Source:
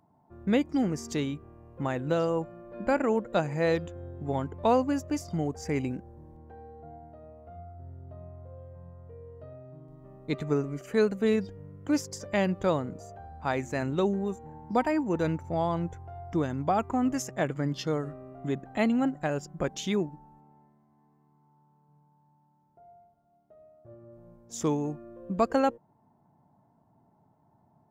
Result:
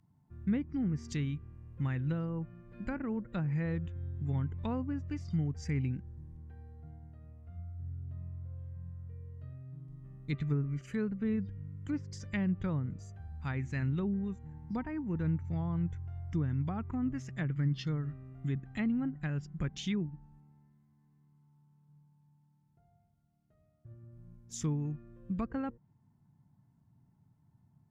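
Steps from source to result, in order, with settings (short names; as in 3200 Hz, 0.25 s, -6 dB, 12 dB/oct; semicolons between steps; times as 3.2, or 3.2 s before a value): treble ducked by the level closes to 1200 Hz, closed at -23 dBFS; EQ curve 130 Hz 0 dB, 640 Hz -25 dB, 1900 Hz -7 dB; gain +4 dB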